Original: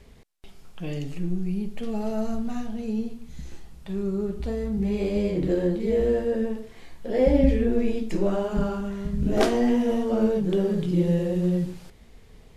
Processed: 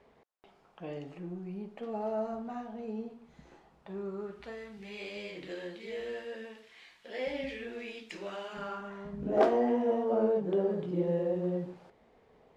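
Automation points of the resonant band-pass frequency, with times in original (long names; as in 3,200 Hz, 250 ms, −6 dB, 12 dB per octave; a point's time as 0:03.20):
resonant band-pass, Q 1.1
0:03.92 800 Hz
0:04.81 2,700 Hz
0:08.47 2,700 Hz
0:09.19 700 Hz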